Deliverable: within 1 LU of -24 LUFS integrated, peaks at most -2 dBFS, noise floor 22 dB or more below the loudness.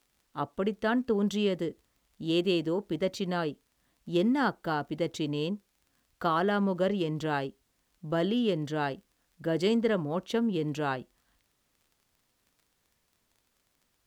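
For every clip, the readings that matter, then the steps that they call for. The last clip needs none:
tick rate 17 per s; loudness -30.0 LUFS; peak level -14.5 dBFS; loudness target -24.0 LUFS
-> de-click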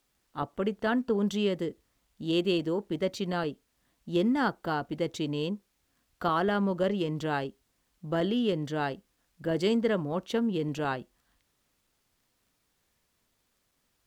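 tick rate 0.50 per s; loudness -30.0 LUFS; peak level -14.5 dBFS; loudness target -24.0 LUFS
-> trim +6 dB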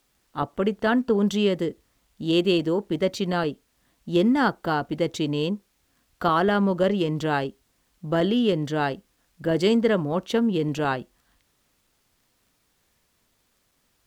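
loudness -24.0 LUFS; peak level -8.5 dBFS; noise floor -69 dBFS

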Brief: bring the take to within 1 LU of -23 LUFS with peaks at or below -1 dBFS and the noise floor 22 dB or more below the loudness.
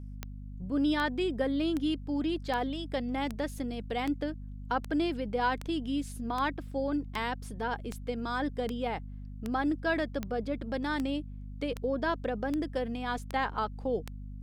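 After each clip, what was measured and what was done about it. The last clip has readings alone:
clicks found 19; hum 50 Hz; highest harmonic 250 Hz; hum level -39 dBFS; loudness -32.5 LUFS; peak level -16.5 dBFS; loudness target -23.0 LUFS
-> de-click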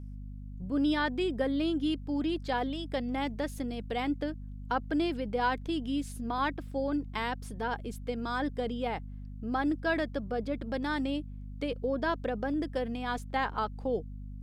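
clicks found 0; hum 50 Hz; highest harmonic 250 Hz; hum level -39 dBFS
-> de-hum 50 Hz, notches 5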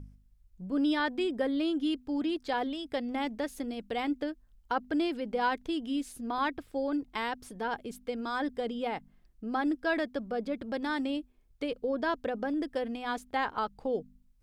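hum not found; loudness -33.0 LUFS; peak level -17.5 dBFS; loudness target -23.0 LUFS
-> trim +10 dB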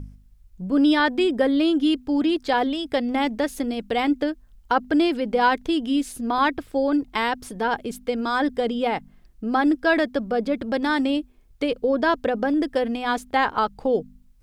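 loudness -23.0 LUFS; peak level -7.5 dBFS; noise floor -54 dBFS

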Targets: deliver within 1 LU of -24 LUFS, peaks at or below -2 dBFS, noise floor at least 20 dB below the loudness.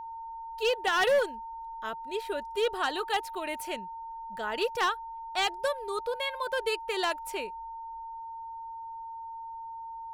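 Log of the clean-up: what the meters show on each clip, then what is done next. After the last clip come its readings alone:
clipped samples 0.6%; clipping level -20.5 dBFS; steady tone 910 Hz; tone level -38 dBFS; loudness -32.0 LUFS; peak level -20.5 dBFS; loudness target -24.0 LUFS
-> clip repair -20.5 dBFS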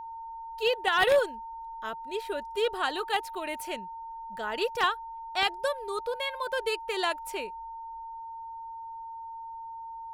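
clipped samples 0.0%; steady tone 910 Hz; tone level -38 dBFS
-> band-stop 910 Hz, Q 30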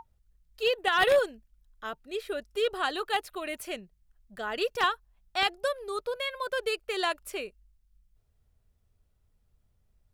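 steady tone not found; loudness -30.0 LUFS; peak level -11.0 dBFS; loudness target -24.0 LUFS
-> trim +6 dB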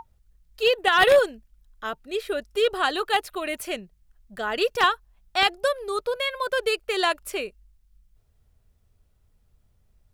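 loudness -24.0 LUFS; peak level -5.0 dBFS; noise floor -65 dBFS

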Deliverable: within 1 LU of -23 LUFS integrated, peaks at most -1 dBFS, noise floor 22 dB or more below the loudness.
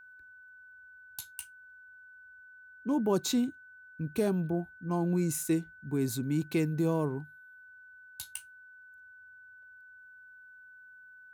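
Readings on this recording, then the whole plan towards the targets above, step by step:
steady tone 1.5 kHz; tone level -51 dBFS; loudness -32.0 LUFS; peak level -17.0 dBFS; loudness target -23.0 LUFS
-> band-stop 1.5 kHz, Q 30; trim +9 dB

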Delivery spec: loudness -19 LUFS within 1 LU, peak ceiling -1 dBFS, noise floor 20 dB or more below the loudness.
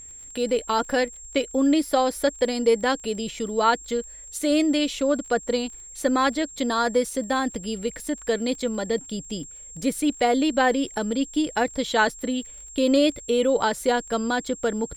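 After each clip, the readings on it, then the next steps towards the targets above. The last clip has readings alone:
tick rate 27 per s; steady tone 7.5 kHz; tone level -40 dBFS; loudness -24.0 LUFS; peak level -7.5 dBFS; loudness target -19.0 LUFS
-> de-click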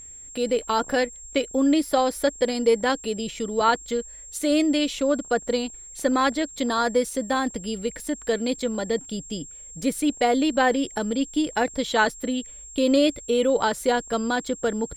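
tick rate 1.5 per s; steady tone 7.5 kHz; tone level -40 dBFS
-> band-stop 7.5 kHz, Q 30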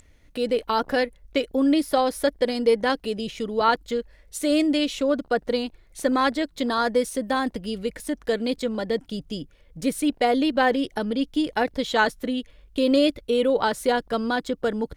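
steady tone not found; loudness -24.0 LUFS; peak level -7.5 dBFS; loudness target -19.0 LUFS
-> trim +5 dB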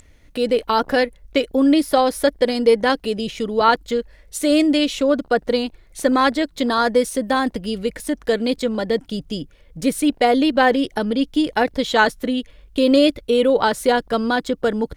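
loudness -19.0 LUFS; peak level -2.5 dBFS; noise floor -50 dBFS

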